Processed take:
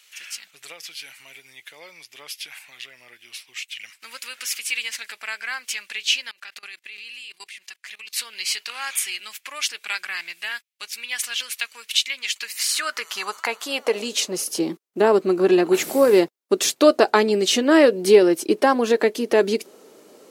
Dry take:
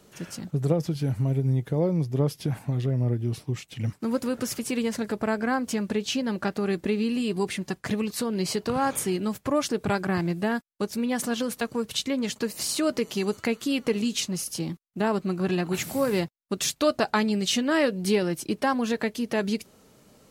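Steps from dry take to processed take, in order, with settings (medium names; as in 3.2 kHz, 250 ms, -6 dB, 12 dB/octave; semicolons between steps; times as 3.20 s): high-pass sweep 2.4 kHz -> 370 Hz, 12.39–14.50 s; 6.31–8.13 s: level held to a coarse grid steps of 22 dB; trim +5.5 dB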